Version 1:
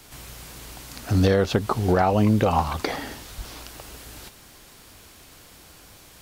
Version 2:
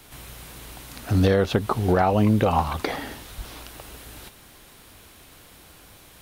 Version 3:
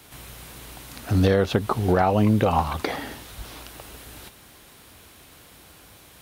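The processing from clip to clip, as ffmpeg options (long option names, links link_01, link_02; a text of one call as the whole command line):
ffmpeg -i in.wav -af "superequalizer=14b=0.631:15b=0.631" out.wav
ffmpeg -i in.wav -af "highpass=45" out.wav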